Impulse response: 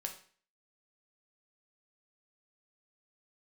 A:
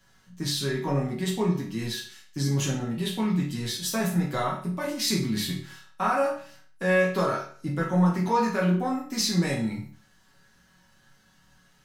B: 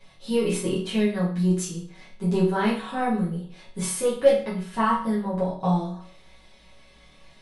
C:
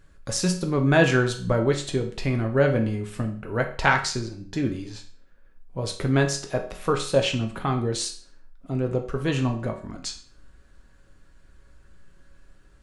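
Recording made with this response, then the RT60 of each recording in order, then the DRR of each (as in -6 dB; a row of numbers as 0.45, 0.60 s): C; 0.45, 0.45, 0.45 s; -5.0, -10.0, 3.0 dB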